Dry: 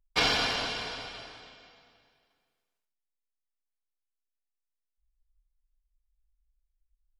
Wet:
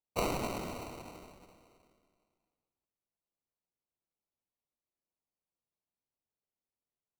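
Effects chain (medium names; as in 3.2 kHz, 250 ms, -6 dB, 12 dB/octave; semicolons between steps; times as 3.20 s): high-pass 1.1 kHz 12 dB/octave; sample-and-hold 26×; trim -5.5 dB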